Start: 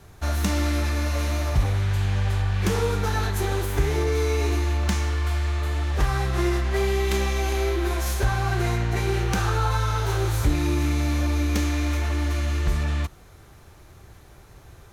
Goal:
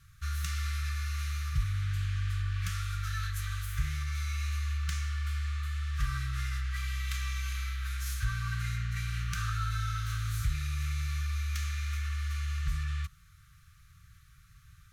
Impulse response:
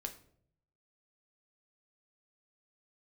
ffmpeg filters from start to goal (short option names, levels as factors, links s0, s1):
-af "afftfilt=real='re*(1-between(b*sr/4096,180,1100))':imag='im*(1-between(b*sr/4096,180,1100))':win_size=4096:overlap=0.75,volume=0.376"